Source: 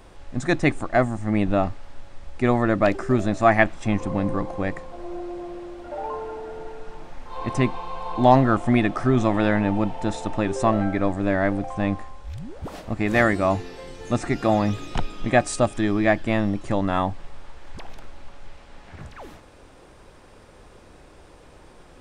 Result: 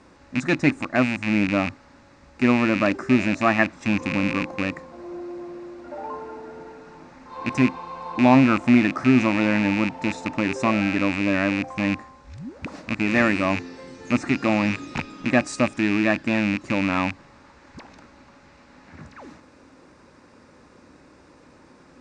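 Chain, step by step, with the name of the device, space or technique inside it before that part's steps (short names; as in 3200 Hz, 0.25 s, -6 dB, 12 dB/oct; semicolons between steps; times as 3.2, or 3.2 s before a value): car door speaker with a rattle (rattling part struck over -28 dBFS, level -13 dBFS; speaker cabinet 100–7300 Hz, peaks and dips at 110 Hz -5 dB, 260 Hz +7 dB, 420 Hz -5 dB, 710 Hz -7 dB, 3200 Hz -10 dB)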